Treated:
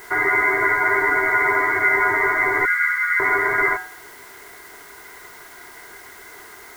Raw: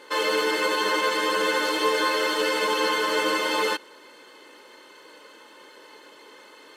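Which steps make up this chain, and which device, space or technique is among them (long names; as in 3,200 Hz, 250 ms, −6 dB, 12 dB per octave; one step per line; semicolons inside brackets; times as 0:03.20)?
hum removal 175.3 Hz, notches 11
0:02.65–0:03.20: elliptic low-pass filter 1,200 Hz, stop band 40 dB
gate on every frequency bin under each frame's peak −30 dB strong
scrambled radio voice (band-pass filter 370–3,100 Hz; voice inversion scrambler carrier 2,500 Hz; white noise bed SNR 25 dB)
level +7.5 dB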